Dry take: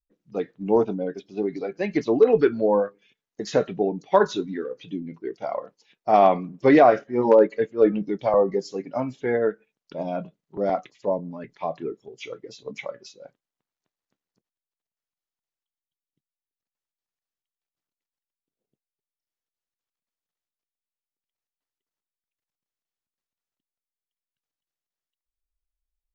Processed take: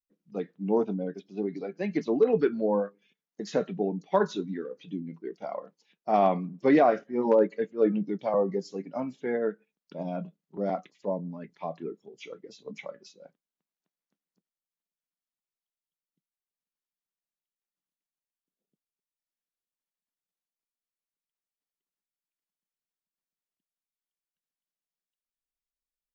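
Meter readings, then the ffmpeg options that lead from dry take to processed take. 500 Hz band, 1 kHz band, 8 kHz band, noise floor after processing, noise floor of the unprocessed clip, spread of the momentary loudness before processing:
-6.0 dB, -6.5 dB, n/a, under -85 dBFS, under -85 dBFS, 18 LU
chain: -af "lowshelf=f=130:t=q:w=3:g=-10,volume=-7dB"

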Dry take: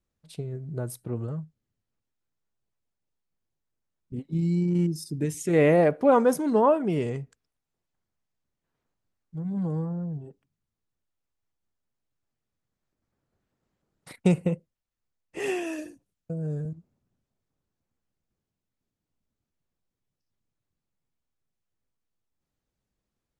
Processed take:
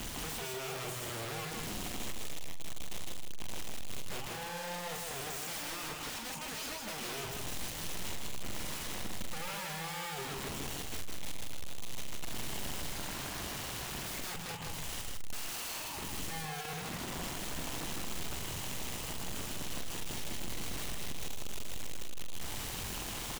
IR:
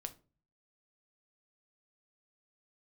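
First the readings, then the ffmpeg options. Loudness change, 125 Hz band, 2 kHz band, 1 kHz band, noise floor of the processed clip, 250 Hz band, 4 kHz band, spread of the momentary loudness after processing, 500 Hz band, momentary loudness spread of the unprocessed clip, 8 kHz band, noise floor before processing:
-13.5 dB, -13.5 dB, -0.5 dB, -8.0 dB, -41 dBFS, -16.0 dB, +12.0 dB, 6 LU, -17.5 dB, 18 LU, +8.0 dB, under -85 dBFS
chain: -filter_complex "[0:a]aeval=exprs='val(0)+0.5*0.0251*sgn(val(0))':c=same,firequalizer=gain_entry='entry(140,0);entry(320,-29);entry(830,5);entry(1600,-8);entry(3000,10);entry(4300,-23);entry(7000,6);entry(11000,-18)':delay=0.05:min_phase=1,acompressor=threshold=-36dB:ratio=4,aeval=exprs='(mod(75*val(0)+1,2)-1)/75':c=same,asplit=2[a][b];[b]adelay=44,volume=-9dB[c];[a][c]amix=inputs=2:normalize=0,asplit=2[d][e];[e]aecho=0:1:158:0.708[f];[d][f]amix=inputs=2:normalize=0"

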